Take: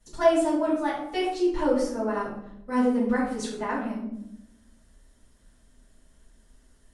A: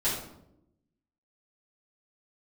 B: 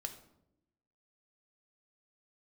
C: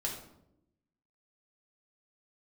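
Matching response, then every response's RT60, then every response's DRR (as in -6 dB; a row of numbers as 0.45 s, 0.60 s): A; 0.80 s, 0.85 s, 0.80 s; -11.0 dB, 5.5 dB, -2.0 dB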